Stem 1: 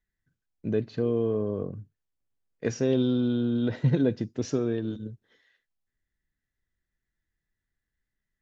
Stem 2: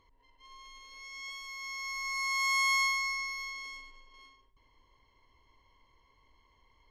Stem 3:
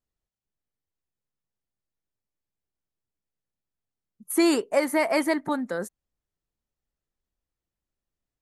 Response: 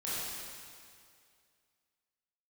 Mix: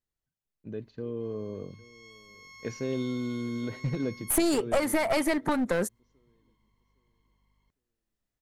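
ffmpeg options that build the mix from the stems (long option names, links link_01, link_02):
-filter_complex "[0:a]bandreject=frequency=700:width=12,volume=-12dB,asplit=2[link_01][link_02];[link_02]volume=-23dB[link_03];[1:a]alimiter=level_in=7.5dB:limit=-24dB:level=0:latency=1,volume=-7.5dB,aeval=exprs='val(0)+0.000891*(sin(2*PI*50*n/s)+sin(2*PI*2*50*n/s)/2+sin(2*PI*3*50*n/s)/3+sin(2*PI*4*50*n/s)/4+sin(2*PI*5*50*n/s)/5)':channel_layout=same,adelay=800,volume=-15.5dB[link_04];[2:a]volume=2dB,asplit=2[link_05][link_06];[link_06]apad=whole_len=339675[link_07];[link_04][link_07]sidechaincompress=threshold=-29dB:ratio=8:attack=16:release=436[link_08];[link_01][link_05]amix=inputs=2:normalize=0,agate=range=-6dB:threshold=-48dB:ratio=16:detection=peak,acompressor=threshold=-24dB:ratio=12,volume=0dB[link_09];[link_03]aecho=0:1:807|1614|2421|3228:1|0.28|0.0784|0.022[link_10];[link_08][link_09][link_10]amix=inputs=3:normalize=0,dynaudnorm=framelen=200:gausssize=11:maxgain=5dB,aeval=exprs='clip(val(0),-1,0.0501)':channel_layout=same"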